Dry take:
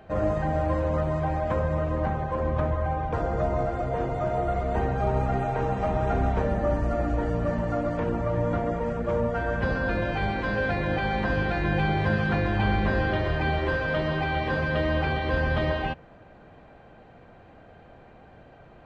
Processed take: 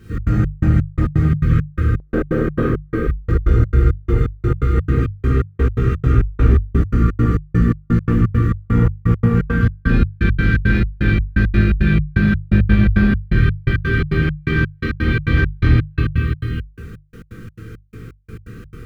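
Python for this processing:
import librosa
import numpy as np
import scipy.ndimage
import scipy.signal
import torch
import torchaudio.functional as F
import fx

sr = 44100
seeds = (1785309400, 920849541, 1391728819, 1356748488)

y = fx.echo_multitap(x, sr, ms=(228, 670), db=(-5.5, -10.5))
y = fx.rider(y, sr, range_db=3, speed_s=2.0)
y = fx.brickwall_bandstop(y, sr, low_hz=500.0, high_hz=1100.0)
y = fx.quant_dither(y, sr, seeds[0], bits=10, dither='none')
y = fx.low_shelf(y, sr, hz=240.0, db=3.0)
y = fx.rev_freeverb(y, sr, rt60_s=1.0, hf_ratio=0.5, predelay_ms=0, drr_db=-6.5)
y = 10.0 ** (-10.5 / 20.0) * np.tanh(y / 10.0 ** (-10.5 / 20.0))
y = fx.doubler(y, sr, ms=18.0, db=-4)
y = fx.step_gate(y, sr, bpm=169, pattern='xx.xx..xx..x.', floor_db=-60.0, edge_ms=4.5)
y = fx.hum_notches(y, sr, base_hz=50, count=3)
y = fx.peak_eq(y, sr, hz=fx.steps((0.0, 88.0), (2.0, 500.0), (3.07, 83.0)), db=13.5, octaves=1.8)
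y = F.gain(torch.from_numpy(y), -1.0).numpy()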